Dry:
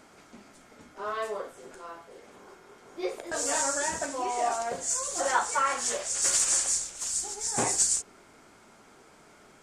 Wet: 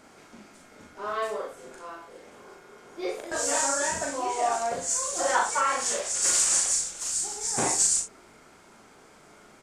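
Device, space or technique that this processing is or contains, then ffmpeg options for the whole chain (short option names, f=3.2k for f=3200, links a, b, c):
slapback doubling: -filter_complex "[0:a]asplit=3[a][b][c];[b]adelay=39,volume=-3dB[d];[c]adelay=62,volume=-9dB[e];[a][d][e]amix=inputs=3:normalize=0"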